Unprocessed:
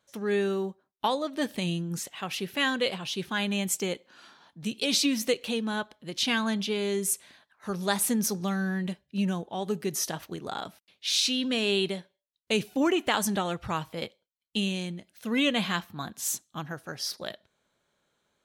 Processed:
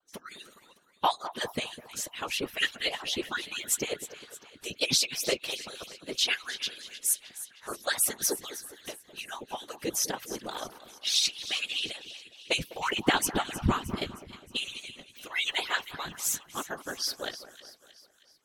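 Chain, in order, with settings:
harmonic-percussive split with one part muted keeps percussive
0:12.92–0:13.99: low shelf with overshoot 370 Hz +11 dB, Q 1.5
random phases in short frames
echo with a time of its own for lows and highs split 1,700 Hz, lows 204 ms, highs 312 ms, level −14 dB
pitch vibrato 0.32 Hz 12 cents
level +2 dB

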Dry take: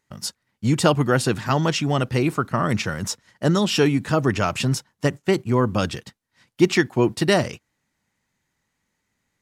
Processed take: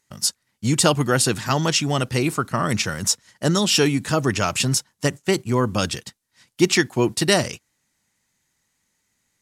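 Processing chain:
parametric band 9,100 Hz +11 dB 2.3 octaves
level −1 dB

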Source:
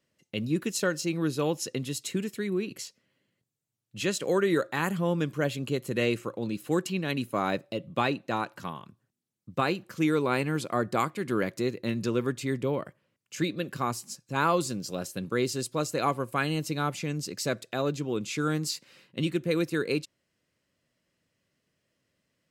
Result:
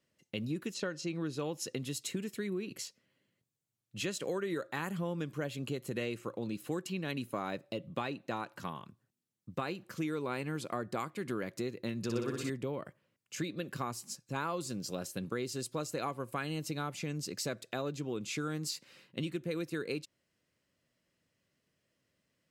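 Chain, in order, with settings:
0:00.73–0:01.50: low-pass filter 4,400 Hz → 10,000 Hz 12 dB per octave
downward compressor 4 to 1, threshold −31 dBFS, peak gain reduction 9.5 dB
0:12.03–0:12.50: flutter between parallel walls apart 10.4 metres, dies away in 0.98 s
level −2.5 dB

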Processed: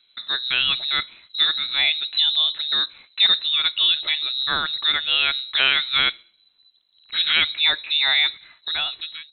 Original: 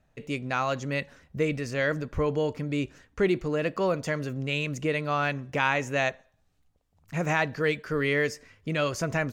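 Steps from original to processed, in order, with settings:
fade-out on the ending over 0.89 s
mains-hum notches 50/100/150 Hz
voice inversion scrambler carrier 4,000 Hz
level +6.5 dB

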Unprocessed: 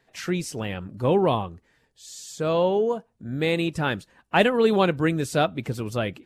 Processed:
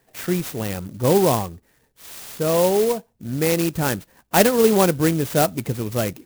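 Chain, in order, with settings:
parametric band 1,300 Hz −3 dB
converter with an unsteady clock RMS 0.076 ms
level +4 dB

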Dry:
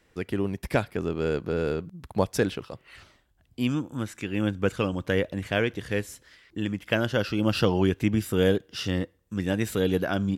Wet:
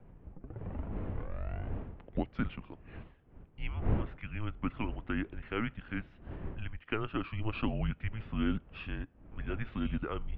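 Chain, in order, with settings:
turntable start at the beginning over 2.43 s
wind on the microphone 250 Hz −31 dBFS
single-sideband voice off tune −220 Hz 160–3,200 Hz
level −8.5 dB

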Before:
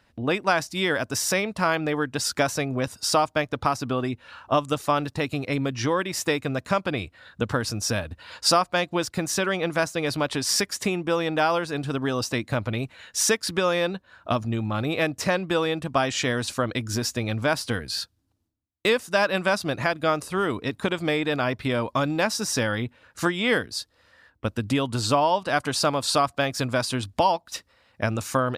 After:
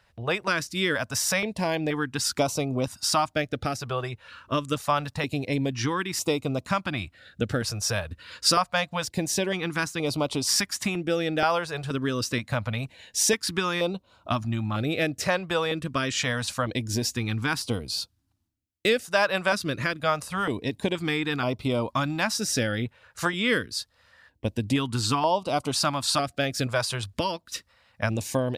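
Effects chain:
notch on a step sequencer 2.1 Hz 270–1,700 Hz

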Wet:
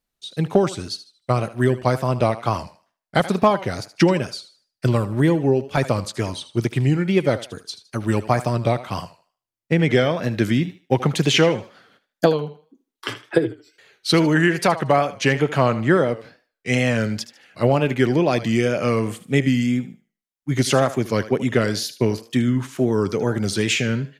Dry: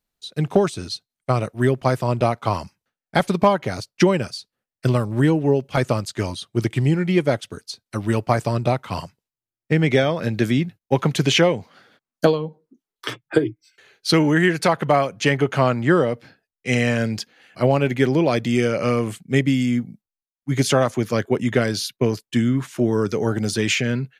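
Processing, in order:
feedback echo with a high-pass in the loop 77 ms, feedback 31%, high-pass 310 Hz, level −14 dB
tape wow and flutter 93 cents

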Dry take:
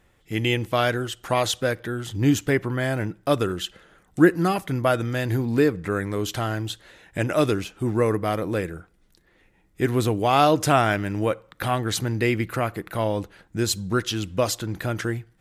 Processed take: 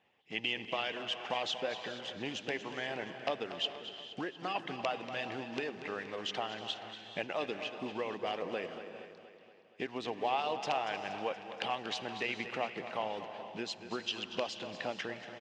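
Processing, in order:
one scale factor per block 5 bits
harmonic and percussive parts rebalanced harmonic −12 dB
downward compressor 5 to 1, threshold −27 dBFS, peak gain reduction 12.5 dB
wrap-around overflow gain 17 dB
loudspeaker in its box 230–5,000 Hz, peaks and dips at 310 Hz −7 dB, 800 Hz +7 dB, 1,400 Hz −7 dB, 2,800 Hz +9 dB, 4,100 Hz −3 dB
repeating echo 236 ms, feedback 59%, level −12 dB
reverb whose tail is shaped and stops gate 460 ms rising, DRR 10.5 dB
level −5 dB

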